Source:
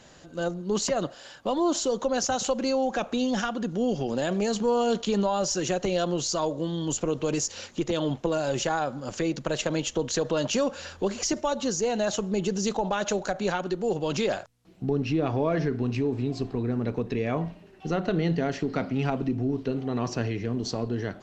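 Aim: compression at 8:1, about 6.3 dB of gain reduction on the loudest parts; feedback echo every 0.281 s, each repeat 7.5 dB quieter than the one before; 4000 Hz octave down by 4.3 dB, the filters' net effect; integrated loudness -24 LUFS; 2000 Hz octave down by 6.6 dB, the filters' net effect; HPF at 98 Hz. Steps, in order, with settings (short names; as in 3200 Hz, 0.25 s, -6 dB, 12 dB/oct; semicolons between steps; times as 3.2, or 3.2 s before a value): HPF 98 Hz; bell 2000 Hz -9 dB; bell 4000 Hz -3 dB; compressor 8:1, threshold -28 dBFS; feedback echo 0.281 s, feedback 42%, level -7.5 dB; gain +8.5 dB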